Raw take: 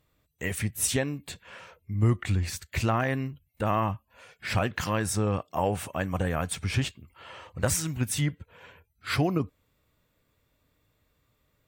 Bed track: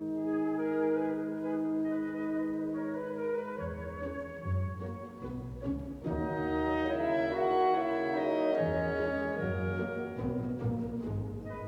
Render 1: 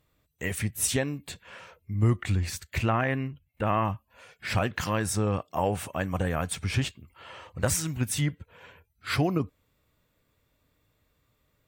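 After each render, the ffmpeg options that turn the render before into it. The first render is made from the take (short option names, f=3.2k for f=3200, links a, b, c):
-filter_complex "[0:a]asettb=1/sr,asplit=3[a][b][c];[a]atrim=end=2.784[d];[b]atrim=start=2.78:end=3.85,asetpts=PTS-STARTPTS,afade=t=in:d=0.004:c=qsin,afade=t=out:st=1.066:d=0.004:c=qsin,highshelf=f=3.6k:t=q:w=1.5:g=-7.5[e];[c]atrim=start=3.846[f];[d][e]acrossfade=d=0.004:c1=hsin:c2=qsin[g];[g][f]acrossfade=d=0.004:c1=qsin:c2=hsin"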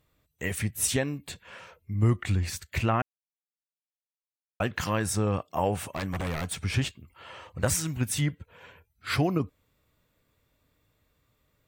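-filter_complex "[0:a]asettb=1/sr,asplit=3[a][b][c];[a]atrim=end=5.864[d];[b]atrim=start=5.86:end=6.62,asetpts=PTS-STARTPTS,afade=t=in:d=0.004:c=qsin,afade=t=out:st=0.756:d=0.004:c=qsin,aeval=exprs='0.0562*(abs(mod(val(0)/0.0562+3,4)-2)-1)':c=same[e];[c]atrim=start=6.616[f];[d][e]acrossfade=d=0.004:c1=hsin:c2=qsin[g];[g][f]acrossfade=d=0.004:c1=qsin:c2=hsin,asplit=3[h][i][j];[h]atrim=end=3.02,asetpts=PTS-STARTPTS,afade=t=out:st=3.016:d=0.004:c=hsin[k];[i]atrim=start=3.02:end=4.6,asetpts=PTS-STARTPTS,volume=0[l];[j]atrim=start=4.6,asetpts=PTS-STARTPTS,afade=t=in:d=0.004:c=hsin[m];[k][l][m]concat=n=3:v=0:a=1"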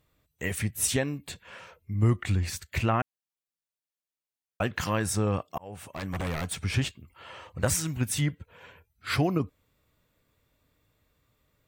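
-filter_complex "[0:a]asplit=2[a][b];[a]atrim=end=5.58,asetpts=PTS-STARTPTS,afade=t=out:st=5.576:d=0.004:c=hsin[c];[b]atrim=start=5.58,asetpts=PTS-STARTPTS,afade=t=in:d=0.62[d];[c][d]concat=n=2:v=0:a=1"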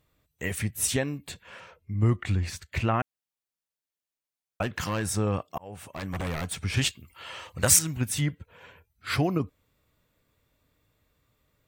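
-filter_complex "[0:a]asettb=1/sr,asplit=3[a][b][c];[a]atrim=end=1.604[d];[b]atrim=start=1.6:end=2.94,asetpts=PTS-STARTPTS,afade=t=in:d=0.004:c=qsin,afade=t=out:st=1.336:d=0.004:c=qsin,highshelf=f=8.9k:g=-10[e];[c]atrim=start=2.936[f];[d][e]acrossfade=d=0.004:c1=hsin:c2=qsin[g];[g][f]acrossfade=d=0.004:c1=qsin:c2=hsin,asettb=1/sr,asplit=3[h][i][j];[h]atrim=end=4.624[k];[i]atrim=start=4.62:end=5.15,asetpts=PTS-STARTPTS,afade=t=in:d=0.004:c=qsin,afade=t=out:st=0.526:d=0.004:c=qsin,asoftclip=type=hard:threshold=-23.5dB[l];[j]atrim=start=5.146[m];[k][l]acrossfade=d=0.004:c1=hsin:c2=qsin[n];[n][m]acrossfade=d=0.004:c1=qsin:c2=hsin,asettb=1/sr,asplit=3[o][p][q];[o]atrim=end=6.774[r];[p]atrim=start=6.77:end=7.79,asetpts=PTS-STARTPTS,afade=t=in:d=0.004:c=qsin,afade=t=out:st=1.016:d=0.004:c=qsin,highshelf=f=2.1k:g=11[s];[q]atrim=start=7.786[t];[r][s]acrossfade=d=0.004:c1=hsin:c2=qsin[u];[u][t]acrossfade=d=0.004:c1=qsin:c2=hsin"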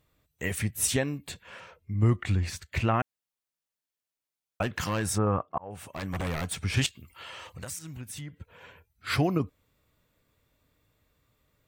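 -filter_complex "[0:a]asettb=1/sr,asplit=3[a][b][c];[a]atrim=end=5.184[d];[b]atrim=start=5.18:end=5.71,asetpts=PTS-STARTPTS,afade=t=in:d=0.004:c=qsin,afade=t=out:st=0.526:d=0.004:c=qsin,lowpass=f=1.3k:t=q:w=1.9[e];[c]atrim=start=5.706[f];[d][e]acrossfade=d=0.004:c1=hsin:c2=qsin[g];[g][f]acrossfade=d=0.004:c1=qsin:c2=hsin,asettb=1/sr,asplit=3[h][i][j];[h]atrim=end=6.864[k];[i]atrim=start=6.86:end=8.37,asetpts=PTS-STARTPTS,afade=t=in:d=0.004:c=qsin,afade=t=out:st=1.506:d=0.004:c=qsin,acompressor=threshold=-39dB:ratio=4:attack=3.2:release=140:knee=1:detection=peak[l];[j]atrim=start=8.366[m];[k][l]acrossfade=d=0.004:c1=hsin:c2=qsin[n];[n][m]acrossfade=d=0.004:c1=qsin:c2=hsin"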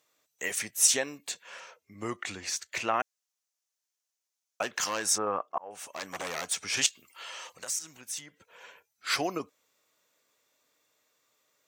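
-af "highpass=460,equalizer=f=6.2k:w=1.7:g=11"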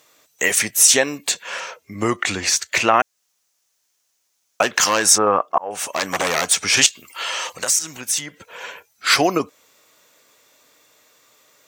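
-filter_complex "[0:a]asplit=2[a][b];[b]acompressor=threshold=-36dB:ratio=6,volume=-1dB[c];[a][c]amix=inputs=2:normalize=0,alimiter=level_in=11.5dB:limit=-1dB:release=50:level=0:latency=1"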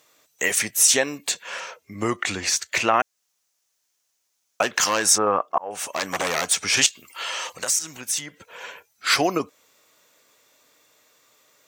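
-af "volume=-4dB"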